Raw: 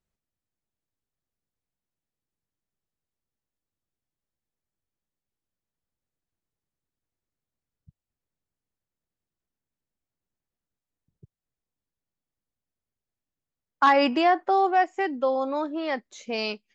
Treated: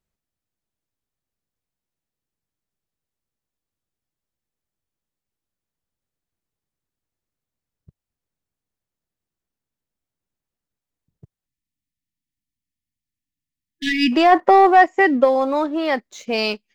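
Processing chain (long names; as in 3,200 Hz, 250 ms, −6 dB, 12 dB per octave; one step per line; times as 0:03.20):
leveller curve on the samples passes 1
0:11.46–0:14.12: time-frequency box erased 340–1,700 Hz
0:14.31–0:15.23: hollow resonant body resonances 210/520/1,000/1,900 Hz, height 11 dB → 8 dB, ringing for 20 ms
level +4 dB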